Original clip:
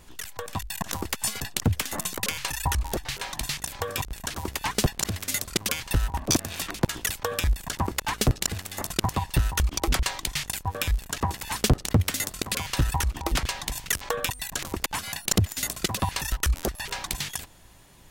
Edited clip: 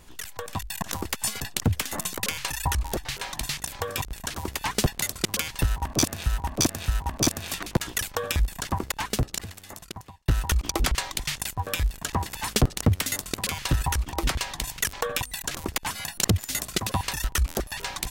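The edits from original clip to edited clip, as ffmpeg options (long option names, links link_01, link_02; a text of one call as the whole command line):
ffmpeg -i in.wav -filter_complex "[0:a]asplit=5[link_01][link_02][link_03][link_04][link_05];[link_01]atrim=end=5.022[link_06];[link_02]atrim=start=5.338:end=6.582[link_07];[link_03]atrim=start=5.958:end=6.582[link_08];[link_04]atrim=start=5.958:end=9.36,asetpts=PTS-STARTPTS,afade=type=out:start_time=1.782:duration=1.62[link_09];[link_05]atrim=start=9.36,asetpts=PTS-STARTPTS,afade=type=in:duration=0.004:curve=hsin[link_10];[link_06][link_07]acrossfade=duration=0.004:curve1=hsin:curve2=hsin[link_11];[link_11][link_08]acrossfade=duration=0.004:curve1=hsin:curve2=hsin[link_12];[link_09][link_10]concat=n=2:v=0:a=1[link_13];[link_12][link_13]acrossfade=duration=0.004:curve1=hsin:curve2=hsin" out.wav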